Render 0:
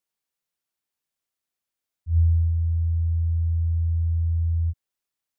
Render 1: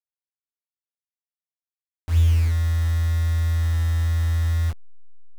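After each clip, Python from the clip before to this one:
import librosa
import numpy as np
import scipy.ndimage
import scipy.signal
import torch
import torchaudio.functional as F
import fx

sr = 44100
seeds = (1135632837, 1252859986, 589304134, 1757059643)

y = fx.delta_hold(x, sr, step_db=-31.0)
y = y * librosa.db_to_amplitude(2.0)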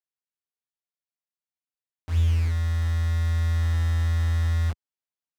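y = scipy.signal.sosfilt(scipy.signal.butter(2, 74.0, 'highpass', fs=sr, output='sos'), x)
y = fx.high_shelf(y, sr, hz=9900.0, db=-12.0)
y = fx.rider(y, sr, range_db=10, speed_s=2.0)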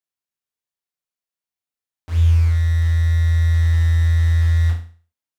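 y = fx.hum_notches(x, sr, base_hz=50, count=5)
y = fx.room_flutter(y, sr, wall_m=6.1, rt60_s=0.42)
y = y * librosa.db_to_amplitude(1.5)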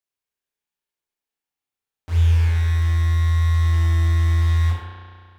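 y = fx.rev_spring(x, sr, rt60_s=2.1, pass_ms=(33,), chirp_ms=70, drr_db=-2.0)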